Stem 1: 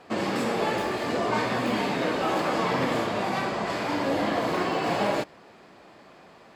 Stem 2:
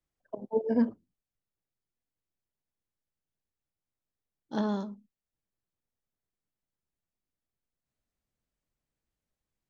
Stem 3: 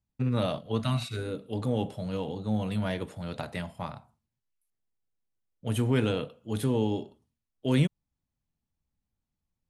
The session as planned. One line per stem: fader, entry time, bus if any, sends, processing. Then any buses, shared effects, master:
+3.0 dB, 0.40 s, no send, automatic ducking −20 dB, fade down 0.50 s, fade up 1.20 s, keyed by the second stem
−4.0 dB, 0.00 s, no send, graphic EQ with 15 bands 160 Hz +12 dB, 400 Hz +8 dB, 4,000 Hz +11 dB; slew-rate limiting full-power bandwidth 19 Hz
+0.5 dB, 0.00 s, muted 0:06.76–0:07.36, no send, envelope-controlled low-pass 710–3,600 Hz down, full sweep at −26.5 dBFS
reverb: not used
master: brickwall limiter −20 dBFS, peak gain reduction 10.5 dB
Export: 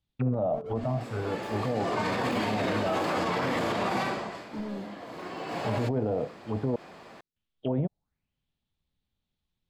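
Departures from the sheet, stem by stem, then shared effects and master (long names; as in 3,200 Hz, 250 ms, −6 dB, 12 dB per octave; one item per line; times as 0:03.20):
stem 1: entry 0.40 s → 0.65 s
stem 2 −4.0 dB → −10.0 dB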